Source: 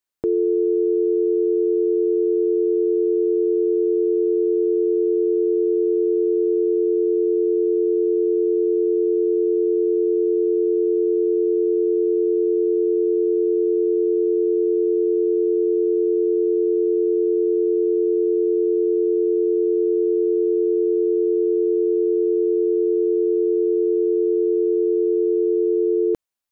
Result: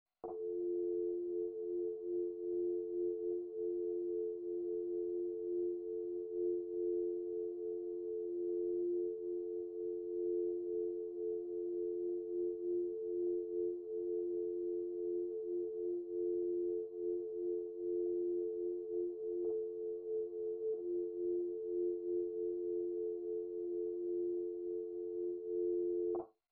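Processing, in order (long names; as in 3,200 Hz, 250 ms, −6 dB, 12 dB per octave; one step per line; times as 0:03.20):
0:19.44–0:20.74: comb filter 7 ms, depth 79%
brickwall limiter −17 dBFS, peak gain reduction 4.5 dB
formant resonators in series a
multi-voice chorus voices 2, 0.29 Hz, delay 13 ms, depth 4.6 ms
convolution reverb RT60 0.20 s, pre-delay 41 ms, DRR 0.5 dB
level +8 dB
MP2 32 kbit/s 44,100 Hz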